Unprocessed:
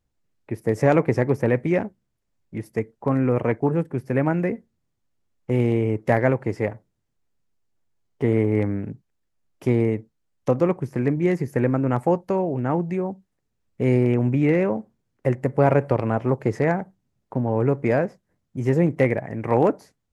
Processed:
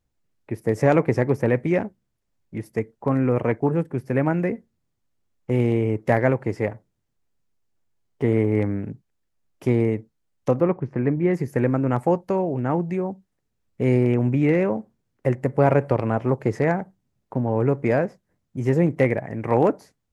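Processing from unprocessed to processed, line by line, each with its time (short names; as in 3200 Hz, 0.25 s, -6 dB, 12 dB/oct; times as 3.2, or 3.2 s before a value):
10.6–11.34 LPF 2300 Hz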